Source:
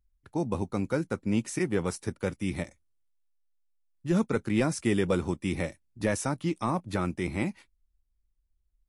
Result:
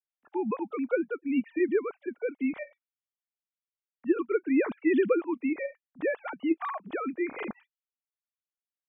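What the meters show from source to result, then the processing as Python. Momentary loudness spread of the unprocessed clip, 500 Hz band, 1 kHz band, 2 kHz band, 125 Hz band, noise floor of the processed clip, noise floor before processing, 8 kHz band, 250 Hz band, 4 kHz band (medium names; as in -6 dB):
7 LU, +2.5 dB, -1.5 dB, 0.0 dB, under -20 dB, under -85 dBFS, -74 dBFS, under -40 dB, +0.5 dB, under -10 dB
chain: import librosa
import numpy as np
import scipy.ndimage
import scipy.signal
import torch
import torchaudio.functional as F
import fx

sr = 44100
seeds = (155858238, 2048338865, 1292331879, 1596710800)

y = fx.sine_speech(x, sr)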